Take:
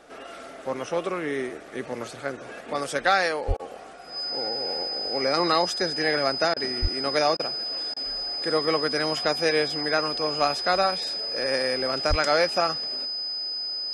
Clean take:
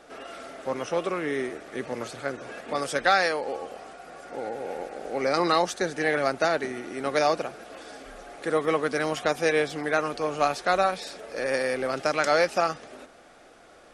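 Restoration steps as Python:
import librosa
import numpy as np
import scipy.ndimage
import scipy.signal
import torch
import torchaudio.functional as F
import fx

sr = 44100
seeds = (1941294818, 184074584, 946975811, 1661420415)

y = fx.notch(x, sr, hz=5000.0, q=30.0)
y = fx.highpass(y, sr, hz=140.0, slope=24, at=(3.47, 3.59), fade=0.02)
y = fx.highpass(y, sr, hz=140.0, slope=24, at=(6.81, 6.93), fade=0.02)
y = fx.highpass(y, sr, hz=140.0, slope=24, at=(12.09, 12.21), fade=0.02)
y = fx.fix_interpolate(y, sr, at_s=(3.57, 6.54, 7.37, 7.94), length_ms=23.0)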